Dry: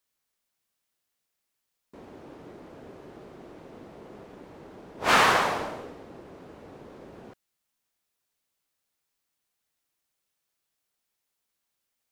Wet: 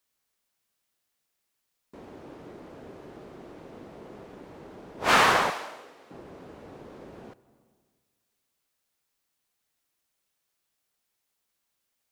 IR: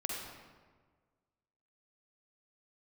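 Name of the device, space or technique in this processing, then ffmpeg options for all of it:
ducked reverb: -filter_complex "[0:a]asplit=3[link_01][link_02][link_03];[1:a]atrim=start_sample=2205[link_04];[link_02][link_04]afir=irnorm=-1:irlink=0[link_05];[link_03]apad=whole_len=534428[link_06];[link_05][link_06]sidechaincompress=threshold=-48dB:ratio=8:attack=5.4:release=502,volume=-12dB[link_07];[link_01][link_07]amix=inputs=2:normalize=0,asettb=1/sr,asplit=3[link_08][link_09][link_10];[link_08]atrim=end=5.504[link_11];[link_09]atrim=start=5.5:end=6.11,asetpts=PTS-STARTPTS,afade=type=in:duration=0.004:curve=qsin,afade=type=out:start_time=0.606:duration=0.004:curve=qsin,highpass=frequency=1300:poles=1[link_12];[link_10]atrim=start=6.106[link_13];[link_11][link_12]acrossfade=duration=0.004:curve1=hsin:curve2=qsin[link_14];[link_14][link_13]acrossfade=duration=0.004:curve1=qsin:curve2=hsin"

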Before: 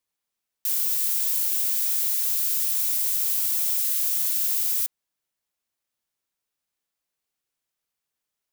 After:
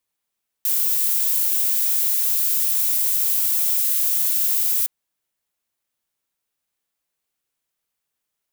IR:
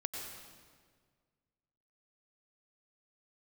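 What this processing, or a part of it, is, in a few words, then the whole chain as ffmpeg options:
exciter from parts: -filter_complex "[0:a]asplit=2[link_01][link_02];[link_02]highpass=frequency=4700:width=0.5412,highpass=frequency=4700:width=1.3066,asoftclip=type=tanh:threshold=-20.5dB,volume=-13.5dB[link_03];[link_01][link_03]amix=inputs=2:normalize=0,volume=3dB"

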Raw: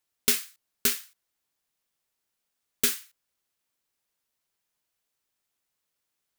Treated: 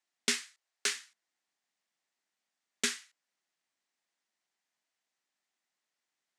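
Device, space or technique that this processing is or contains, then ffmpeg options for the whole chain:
television speaker: -filter_complex "[0:a]highpass=frequency=180:width=0.5412,highpass=frequency=180:width=1.3066,equalizer=frequency=460:width_type=q:width=4:gain=-5,equalizer=frequency=740:width_type=q:width=4:gain=4,equalizer=frequency=1900:width_type=q:width=4:gain=6,lowpass=frequency=8100:width=0.5412,lowpass=frequency=8100:width=1.3066,asettb=1/sr,asplit=3[link_01][link_02][link_03];[link_01]atrim=end=0.454[link_04];[link_02]atrim=start=0.45:end=0.96,asetpts=PTS-STARTPTS,afade=type=in:duration=0.004:curve=qsin,afade=type=out:start_time=0.506:duration=0.004:curve=qsin,highpass=frequency=370:width=0.5412,highpass=frequency=370:width=1.3066[link_05];[link_03]atrim=start=0.956[link_06];[link_04][link_05]acrossfade=duration=0.004:curve1=hsin:curve2=qsin[link_07];[link_07][link_06]acrossfade=duration=0.004:curve1=qsin:curve2=hsin,volume=-3dB"

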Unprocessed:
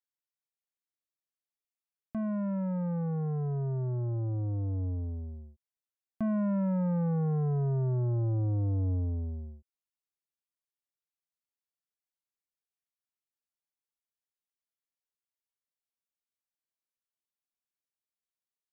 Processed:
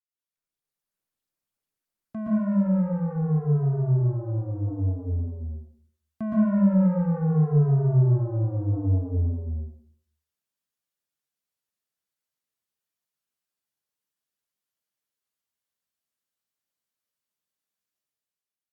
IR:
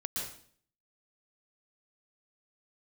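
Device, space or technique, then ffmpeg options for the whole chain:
far-field microphone of a smart speaker: -filter_complex "[1:a]atrim=start_sample=2205[link_01];[0:a][link_01]afir=irnorm=-1:irlink=0,highpass=83,dynaudnorm=framelen=140:gausssize=9:maxgain=9dB,volume=-6dB" -ar 48000 -c:a libopus -b:a 48k

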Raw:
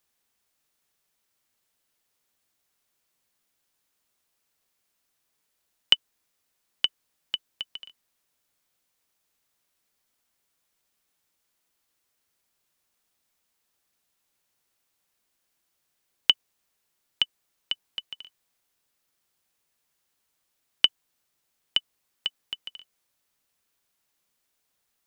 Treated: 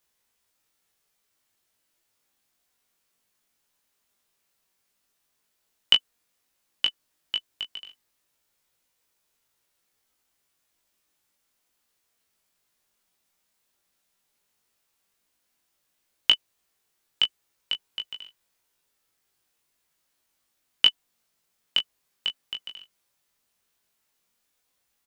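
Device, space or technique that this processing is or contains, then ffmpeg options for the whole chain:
double-tracked vocal: -filter_complex "[0:a]asplit=2[link_01][link_02];[link_02]adelay=17,volume=-9dB[link_03];[link_01][link_03]amix=inputs=2:normalize=0,flanger=delay=19:depth=3.1:speed=0.11,volume=4dB"

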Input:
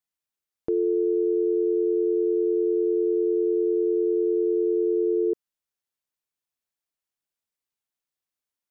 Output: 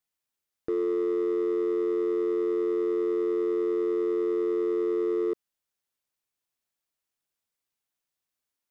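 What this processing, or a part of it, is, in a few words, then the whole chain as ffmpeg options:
limiter into clipper: -af "alimiter=limit=-22.5dB:level=0:latency=1:release=42,asoftclip=type=hard:threshold=-25dB,volume=2.5dB"

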